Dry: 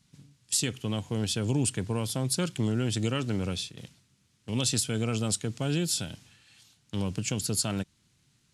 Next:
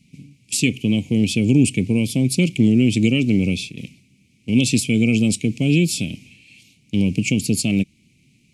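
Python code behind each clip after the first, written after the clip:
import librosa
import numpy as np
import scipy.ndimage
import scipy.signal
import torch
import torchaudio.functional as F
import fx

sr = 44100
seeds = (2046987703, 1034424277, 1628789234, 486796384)

y = fx.curve_eq(x, sr, hz=(110.0, 250.0, 660.0, 1000.0, 1600.0, 2300.0, 3500.0), db=(0, 9, -8, -21, -29, 11, -4))
y = F.gain(torch.from_numpy(y), 8.0).numpy()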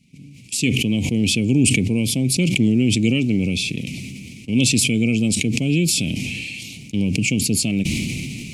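y = fx.sustainer(x, sr, db_per_s=21.0)
y = F.gain(torch.from_numpy(y), -2.5).numpy()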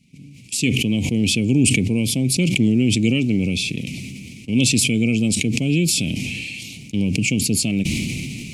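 y = x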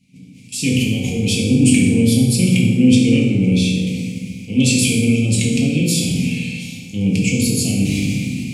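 y = fx.rev_fdn(x, sr, rt60_s=1.3, lf_ratio=1.5, hf_ratio=0.7, size_ms=12.0, drr_db=-5.0)
y = F.gain(torch.from_numpy(y), -4.5).numpy()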